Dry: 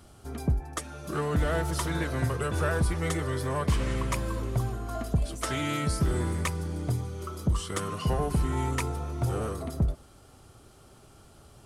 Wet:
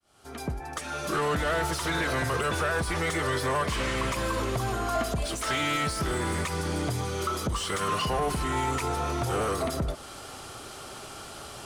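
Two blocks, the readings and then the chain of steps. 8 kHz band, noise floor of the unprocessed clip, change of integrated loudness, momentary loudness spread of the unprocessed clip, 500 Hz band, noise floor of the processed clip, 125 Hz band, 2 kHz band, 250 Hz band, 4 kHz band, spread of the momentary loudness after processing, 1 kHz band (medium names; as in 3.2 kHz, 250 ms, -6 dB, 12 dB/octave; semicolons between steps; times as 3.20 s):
+3.5 dB, -54 dBFS, +1.5 dB, 6 LU, +3.0 dB, -43 dBFS, -4.0 dB, +6.5 dB, -0.5 dB, +7.0 dB, 14 LU, +6.0 dB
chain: fade-in on the opening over 1.45 s; treble shelf 2.5 kHz +11 dB; in parallel at +2.5 dB: compression, threshold -34 dBFS, peak gain reduction 13.5 dB; on the sum: peak limiter -18.5 dBFS, peak gain reduction 10.5 dB; overdrive pedal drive 15 dB, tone 2 kHz, clips at -18.5 dBFS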